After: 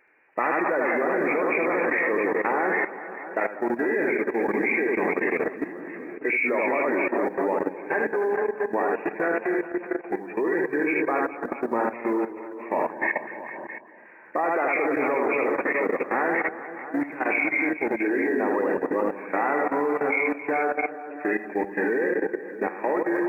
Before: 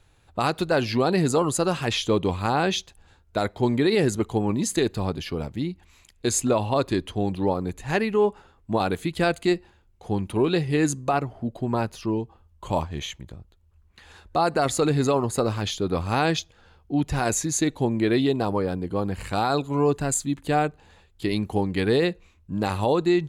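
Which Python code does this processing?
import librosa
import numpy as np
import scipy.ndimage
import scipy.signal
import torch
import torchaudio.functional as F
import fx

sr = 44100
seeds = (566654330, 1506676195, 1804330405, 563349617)

y = fx.freq_compress(x, sr, knee_hz=1500.0, ratio=4.0)
y = fx.rider(y, sr, range_db=10, speed_s=2.0)
y = fx.quant_float(y, sr, bits=6)
y = scipy.signal.sosfilt(scipy.signal.butter(4, 290.0, 'highpass', fs=sr, output='sos'), y)
y = fx.notch(y, sr, hz=710.0, q=22.0)
y = fx.echo_bbd(y, sr, ms=197, stages=2048, feedback_pct=62, wet_db=-9.0)
y = fx.wow_flutter(y, sr, seeds[0], rate_hz=2.1, depth_cents=48.0)
y = fx.echo_multitap(y, sr, ms=(77, 269, 408, 431, 667), db=(-4.0, -11.5, -19.5, -10.0, -10.5))
y = fx.level_steps(y, sr, step_db=13)
y = F.gain(torch.from_numpy(y), 2.5).numpy()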